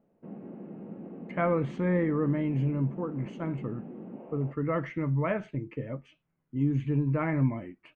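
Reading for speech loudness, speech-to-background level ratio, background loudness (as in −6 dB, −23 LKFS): −30.5 LKFS, 13.5 dB, −44.0 LKFS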